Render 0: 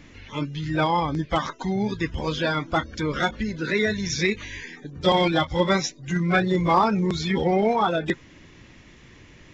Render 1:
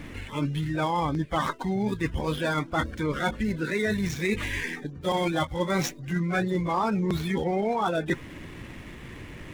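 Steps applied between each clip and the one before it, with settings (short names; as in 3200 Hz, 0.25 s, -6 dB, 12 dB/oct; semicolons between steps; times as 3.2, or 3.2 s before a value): median filter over 9 samples; reverse; compressor 5:1, threshold -33 dBFS, peak gain reduction 16.5 dB; reverse; gain +8 dB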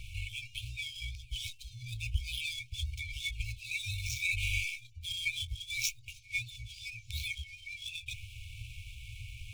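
FFT band-reject 120–2200 Hz; dynamic EQ 2300 Hz, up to +5 dB, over -53 dBFS, Q 3.7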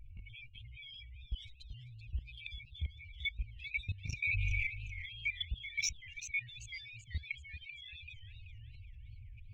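spectral contrast raised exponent 2.3; level quantiser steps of 18 dB; warbling echo 0.387 s, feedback 40%, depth 139 cents, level -11 dB; gain +3 dB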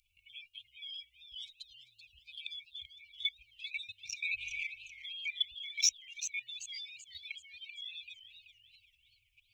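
inverse Chebyshev high-pass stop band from 1500 Hz, stop band 40 dB; gain +8.5 dB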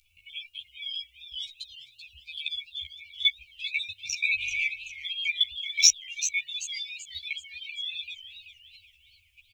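doubler 13 ms -2.5 dB; gain +8 dB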